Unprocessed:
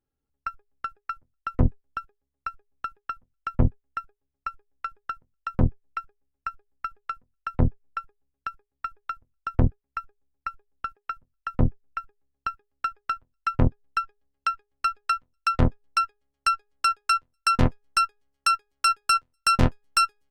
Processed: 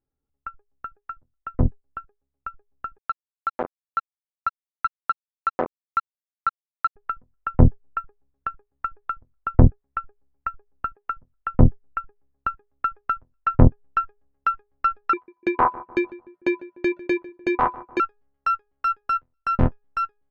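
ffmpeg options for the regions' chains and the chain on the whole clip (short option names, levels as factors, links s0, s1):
-filter_complex "[0:a]asettb=1/sr,asplit=3[s0][s1][s2];[s0]atrim=end=2.984[s3];[s1]atrim=start=2.98:end=6.96,asetpts=PTS-STARTPTS,afade=t=in:d=0.004:c=qsin,afade=t=out:st=3.976:d=0.004:c=qsin,highpass=490,acrusher=bits=4:mix=0:aa=0.5,asplit=2[s4][s5];[s5]highpass=f=720:p=1,volume=6.31,asoftclip=type=tanh:threshold=0.188[s6];[s4][s6]amix=inputs=2:normalize=0,lowpass=f=3100:p=1,volume=0.501[s7];[s2]atrim=start=6.956[s8];[s3][s7]acrossfade=d=0.004:c1=hsin:c2=qsin[s9];[s9][s8]acrossfade=d=0.004:c1=qsin:c2=hsin,asettb=1/sr,asplit=3[s10][s11][s12];[s10]atrim=end=15.134[s13];[s11]atrim=start=15.13:end=18,asetpts=PTS-STARTPTS,afade=t=in:d=0.004:c=qsin,afade=t=out:st=2.866:d=0.004:c=qsin,equalizer=f=80:t=o:w=1.7:g=-9.5,aeval=exprs='val(0)*sin(2*PI*1000*n/s)':c=same,asplit=2[s14][s15];[s15]adelay=149,lowpass=f=1300:p=1,volume=0.141,asplit=2[s16][s17];[s17]adelay=149,lowpass=f=1300:p=1,volume=0.47,asplit=2[s18][s19];[s19]adelay=149,lowpass=f=1300:p=1,volume=0.47,asplit=2[s20][s21];[s21]adelay=149,lowpass=f=1300:p=1,volume=0.47[s22];[s14][s16][s18][s20][s22]amix=inputs=5:normalize=0,atrim=end_sample=126567[s23];[s12]atrim=start=17.996[s24];[s13][s23]acrossfade=d=0.004:c1=hsin:c2=qsin[s25];[s25][s24]acrossfade=d=0.004:c1=qsin:c2=hsin,lowpass=1300,dynaudnorm=f=990:g=7:m=3.76"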